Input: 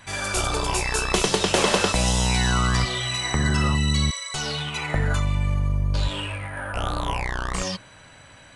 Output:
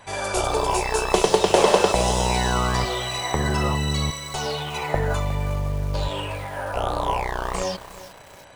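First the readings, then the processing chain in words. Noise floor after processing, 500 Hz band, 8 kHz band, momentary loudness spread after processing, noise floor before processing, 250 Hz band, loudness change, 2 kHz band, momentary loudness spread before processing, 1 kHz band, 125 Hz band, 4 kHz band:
−45 dBFS, +6.5 dB, −2.5 dB, 11 LU, −48 dBFS, −1.0 dB, +0.5 dB, −2.5 dB, 8 LU, +4.5 dB, −2.5 dB, −2.5 dB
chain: flat-topped bell 610 Hz +9 dB
feedback echo at a low word length 361 ms, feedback 55%, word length 5 bits, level −13.5 dB
level −2.5 dB

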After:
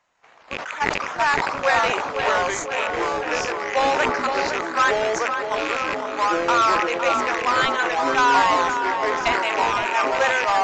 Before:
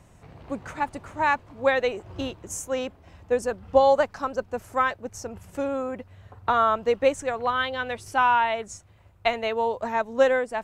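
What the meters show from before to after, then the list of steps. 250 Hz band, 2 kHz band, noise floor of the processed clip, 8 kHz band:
+3.0 dB, +8.5 dB, −34 dBFS, +6.5 dB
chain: loose part that buzzes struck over −37 dBFS, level −20 dBFS
noise gate −50 dBFS, range −10 dB
high-pass filter 1,400 Hz 12 dB per octave
high-shelf EQ 3,800 Hz −11 dB
in parallel at −5 dB: sample-and-hold swept by an LFO 12×, swing 60% 2.4 Hz
on the sum: hard clipping −20 dBFS, distortion −16 dB
delay with pitch and tempo change per echo 174 ms, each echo −4 semitones, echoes 3
on a send: tape delay 512 ms, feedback 71%, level −6 dB, low-pass 2,400 Hz
on the sum: downsampling to 16,000 Hz
level that may fall only so fast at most 38 dB per second
level +7.5 dB

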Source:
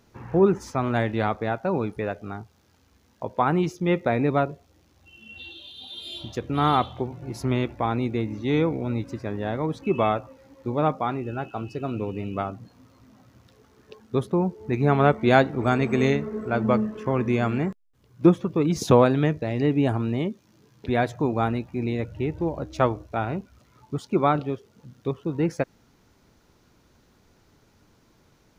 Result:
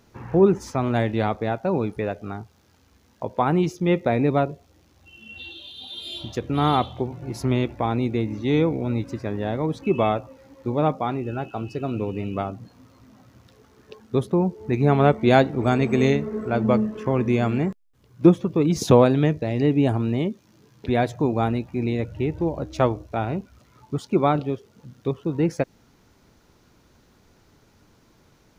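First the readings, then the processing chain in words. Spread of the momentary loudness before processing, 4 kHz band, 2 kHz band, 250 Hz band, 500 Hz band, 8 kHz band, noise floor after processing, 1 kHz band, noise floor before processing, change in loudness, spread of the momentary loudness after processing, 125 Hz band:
14 LU, +2.0 dB, −1.0 dB, +2.5 dB, +2.0 dB, +2.5 dB, −59 dBFS, 0.0 dB, −61 dBFS, +2.0 dB, 14 LU, +2.5 dB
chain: dynamic equaliser 1,400 Hz, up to −5 dB, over −39 dBFS, Q 1.2
level +2.5 dB

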